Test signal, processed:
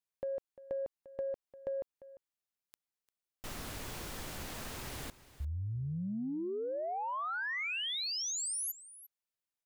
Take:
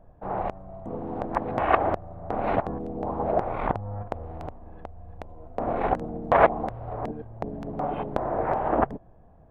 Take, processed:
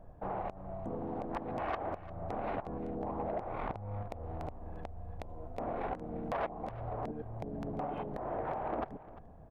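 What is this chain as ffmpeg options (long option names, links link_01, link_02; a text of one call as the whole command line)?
ffmpeg -i in.wav -af "acompressor=threshold=-36dB:ratio=3,asoftclip=type=tanh:threshold=-26.5dB,aecho=1:1:348:0.141" out.wav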